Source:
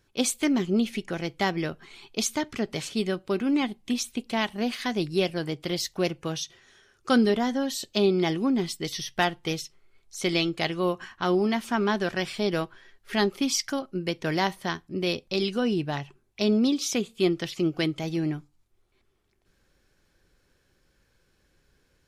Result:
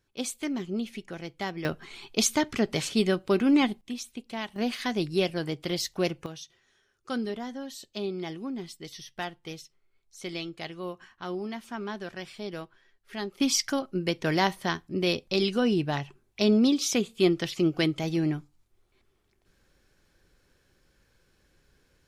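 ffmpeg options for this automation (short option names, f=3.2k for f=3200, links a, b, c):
-af "asetnsamples=n=441:p=0,asendcmd='1.65 volume volume 3dB;3.81 volume volume -8dB;4.56 volume volume -1dB;6.26 volume volume -10.5dB;13.4 volume volume 1dB',volume=-7.5dB"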